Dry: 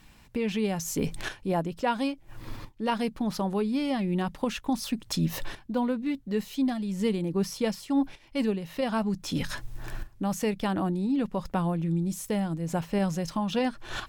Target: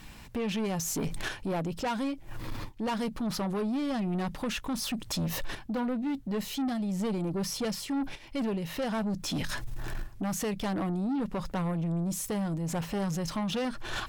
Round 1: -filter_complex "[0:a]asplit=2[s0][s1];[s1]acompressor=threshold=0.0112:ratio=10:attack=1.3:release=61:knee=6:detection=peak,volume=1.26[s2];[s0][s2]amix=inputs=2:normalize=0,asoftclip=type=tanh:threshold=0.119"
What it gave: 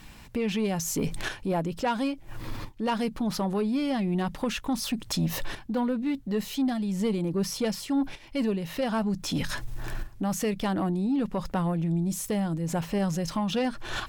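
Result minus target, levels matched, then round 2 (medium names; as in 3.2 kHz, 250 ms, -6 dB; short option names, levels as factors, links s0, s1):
saturation: distortion -10 dB
-filter_complex "[0:a]asplit=2[s0][s1];[s1]acompressor=threshold=0.0112:ratio=10:attack=1.3:release=61:knee=6:detection=peak,volume=1.26[s2];[s0][s2]amix=inputs=2:normalize=0,asoftclip=type=tanh:threshold=0.0447"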